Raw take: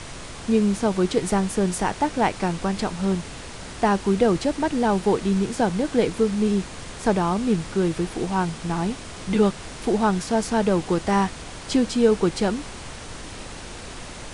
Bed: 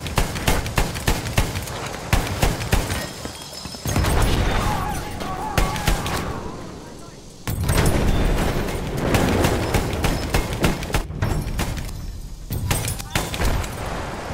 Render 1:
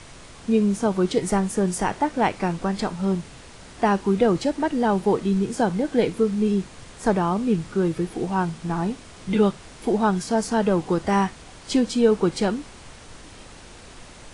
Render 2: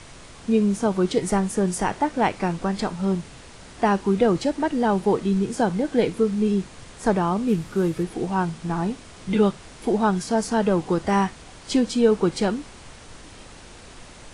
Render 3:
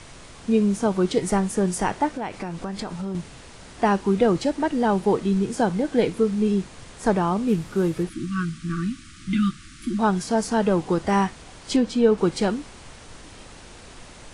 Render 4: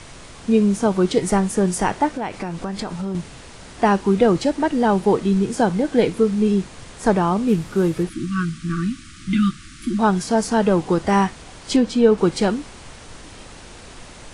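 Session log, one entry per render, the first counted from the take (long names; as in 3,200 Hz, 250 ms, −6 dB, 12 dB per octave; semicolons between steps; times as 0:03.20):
noise reduction from a noise print 7 dB
0:07.48–0:08.03: variable-slope delta modulation 64 kbit/s
0:02.14–0:03.15: downward compressor 4 to 1, threshold −27 dBFS; 0:08.09–0:09.99: linear-phase brick-wall band-stop 350–1,100 Hz; 0:11.76–0:12.18: low-pass filter 3,600 Hz 6 dB per octave
level +3.5 dB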